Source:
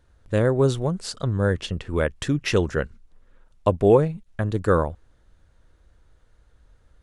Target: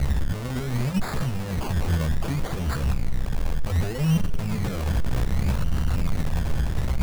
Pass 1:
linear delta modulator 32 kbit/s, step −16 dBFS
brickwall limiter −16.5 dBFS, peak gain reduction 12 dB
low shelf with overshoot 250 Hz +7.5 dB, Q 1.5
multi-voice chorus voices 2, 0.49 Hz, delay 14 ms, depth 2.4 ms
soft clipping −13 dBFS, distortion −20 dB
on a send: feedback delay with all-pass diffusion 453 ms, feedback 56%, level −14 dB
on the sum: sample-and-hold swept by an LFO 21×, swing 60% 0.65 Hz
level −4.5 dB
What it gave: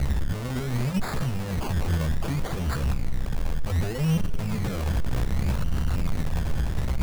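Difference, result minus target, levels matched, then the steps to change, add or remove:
soft clipping: distortion +13 dB
change: soft clipping −5.5 dBFS, distortion −33 dB

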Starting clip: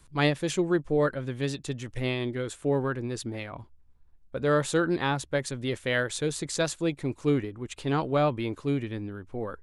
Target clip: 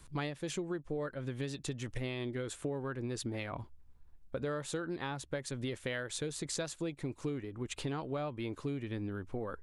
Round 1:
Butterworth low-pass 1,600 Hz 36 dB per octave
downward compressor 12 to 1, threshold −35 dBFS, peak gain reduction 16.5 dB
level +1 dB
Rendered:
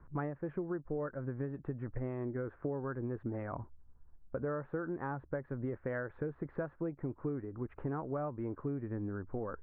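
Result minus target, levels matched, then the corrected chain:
2,000 Hz band −3.5 dB
downward compressor 12 to 1, threshold −35 dBFS, peak gain reduction 17 dB
level +1 dB

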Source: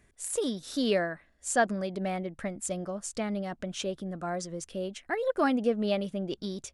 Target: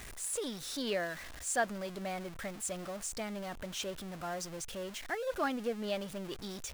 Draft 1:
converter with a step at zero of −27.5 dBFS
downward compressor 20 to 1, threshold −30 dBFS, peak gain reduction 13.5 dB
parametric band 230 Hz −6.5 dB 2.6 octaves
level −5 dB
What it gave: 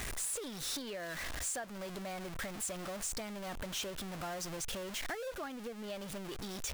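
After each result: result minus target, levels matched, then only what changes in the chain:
downward compressor: peak gain reduction +13.5 dB; converter with a step at zero: distortion +6 dB
remove: downward compressor 20 to 1, threshold −30 dBFS, peak gain reduction 13.5 dB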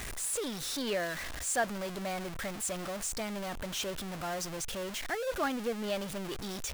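converter with a step at zero: distortion +6 dB
change: converter with a step at zero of −35 dBFS

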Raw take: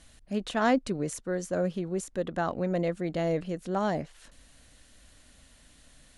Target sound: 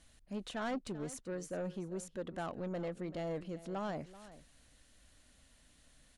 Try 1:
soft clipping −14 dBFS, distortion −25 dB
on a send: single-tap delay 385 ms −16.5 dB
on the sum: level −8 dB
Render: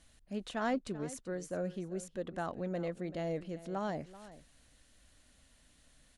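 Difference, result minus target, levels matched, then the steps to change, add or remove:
soft clipping: distortion −14 dB
change: soft clipping −25 dBFS, distortion −12 dB

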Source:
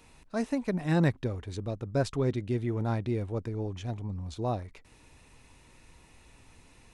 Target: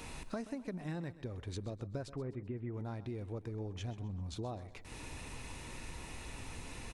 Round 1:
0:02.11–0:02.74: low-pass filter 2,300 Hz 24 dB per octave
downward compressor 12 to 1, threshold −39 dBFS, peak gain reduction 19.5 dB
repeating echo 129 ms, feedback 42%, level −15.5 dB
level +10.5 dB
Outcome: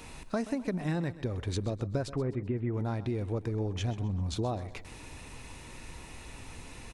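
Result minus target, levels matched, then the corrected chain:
downward compressor: peak gain reduction −9 dB
0:02.11–0:02.74: low-pass filter 2,300 Hz 24 dB per octave
downward compressor 12 to 1, threshold −49 dBFS, peak gain reduction 28.5 dB
repeating echo 129 ms, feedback 42%, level −15.5 dB
level +10.5 dB

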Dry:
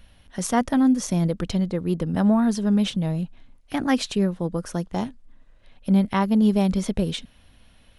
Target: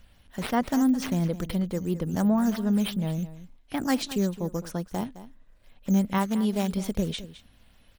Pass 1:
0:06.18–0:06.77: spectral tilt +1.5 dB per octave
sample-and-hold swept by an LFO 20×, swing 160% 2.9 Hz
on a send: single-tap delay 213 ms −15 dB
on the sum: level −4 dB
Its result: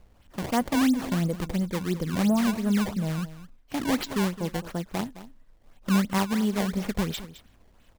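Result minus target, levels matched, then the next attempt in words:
sample-and-hold swept by an LFO: distortion +11 dB
0:06.18–0:06.77: spectral tilt +1.5 dB per octave
sample-and-hold swept by an LFO 4×, swing 160% 2.9 Hz
on a send: single-tap delay 213 ms −15 dB
on the sum: level −4 dB

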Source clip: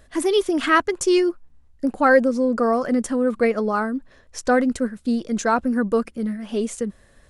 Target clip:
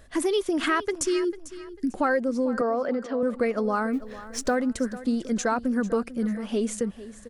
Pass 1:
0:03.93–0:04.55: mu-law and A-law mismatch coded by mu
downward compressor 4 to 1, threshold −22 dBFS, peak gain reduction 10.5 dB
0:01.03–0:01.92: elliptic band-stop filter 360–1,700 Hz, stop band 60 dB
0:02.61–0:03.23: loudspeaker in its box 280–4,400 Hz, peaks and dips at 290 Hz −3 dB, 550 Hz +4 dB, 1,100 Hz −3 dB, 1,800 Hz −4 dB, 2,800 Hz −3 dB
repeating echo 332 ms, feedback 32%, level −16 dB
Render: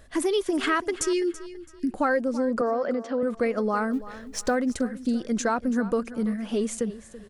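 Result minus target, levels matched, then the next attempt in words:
echo 114 ms early
0:03.93–0:04.55: mu-law and A-law mismatch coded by mu
downward compressor 4 to 1, threshold −22 dBFS, peak gain reduction 10.5 dB
0:01.03–0:01.92: elliptic band-stop filter 360–1,700 Hz, stop band 60 dB
0:02.61–0:03.23: loudspeaker in its box 280–4,400 Hz, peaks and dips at 290 Hz −3 dB, 550 Hz +4 dB, 1,100 Hz −3 dB, 1,800 Hz −4 dB, 2,800 Hz −3 dB
repeating echo 446 ms, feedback 32%, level −16 dB

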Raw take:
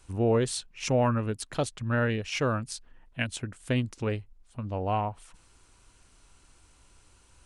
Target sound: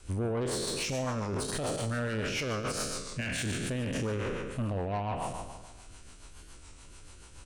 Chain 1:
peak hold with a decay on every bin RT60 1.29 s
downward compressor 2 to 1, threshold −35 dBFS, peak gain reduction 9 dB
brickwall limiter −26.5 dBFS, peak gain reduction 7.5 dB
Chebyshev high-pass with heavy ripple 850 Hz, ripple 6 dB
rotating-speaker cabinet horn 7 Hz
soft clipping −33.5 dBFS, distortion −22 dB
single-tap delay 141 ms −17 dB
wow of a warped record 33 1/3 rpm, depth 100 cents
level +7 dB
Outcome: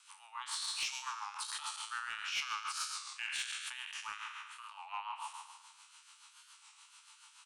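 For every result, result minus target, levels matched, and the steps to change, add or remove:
downward compressor: peak gain reduction +9 dB; 1,000 Hz band +3.0 dB
remove: downward compressor 2 to 1, threshold −35 dBFS, peak gain reduction 9 dB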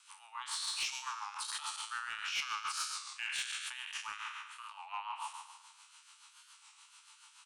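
1,000 Hz band +3.0 dB
remove: Chebyshev high-pass with heavy ripple 850 Hz, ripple 6 dB

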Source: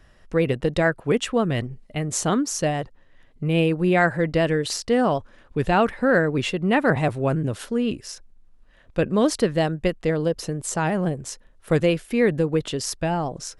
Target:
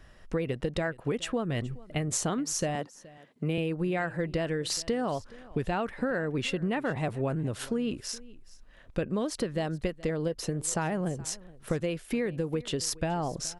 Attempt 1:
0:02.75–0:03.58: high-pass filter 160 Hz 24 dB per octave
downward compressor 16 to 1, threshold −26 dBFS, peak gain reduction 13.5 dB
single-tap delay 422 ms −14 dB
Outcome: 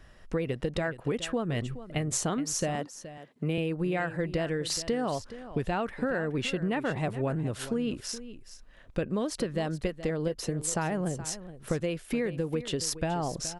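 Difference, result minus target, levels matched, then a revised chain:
echo-to-direct +7 dB
0:02.75–0:03.58: high-pass filter 160 Hz 24 dB per octave
downward compressor 16 to 1, threshold −26 dBFS, peak gain reduction 13.5 dB
single-tap delay 422 ms −21 dB

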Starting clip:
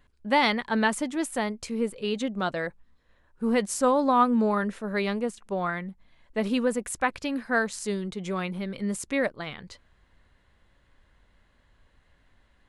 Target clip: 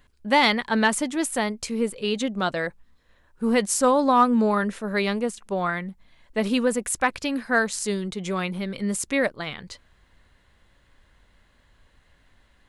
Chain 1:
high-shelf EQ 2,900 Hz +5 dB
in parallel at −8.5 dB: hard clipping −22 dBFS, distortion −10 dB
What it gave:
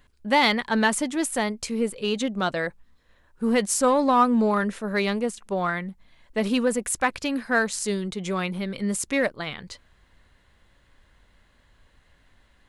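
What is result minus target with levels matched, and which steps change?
hard clipping: distortion +11 dB
change: hard clipping −15 dBFS, distortion −21 dB

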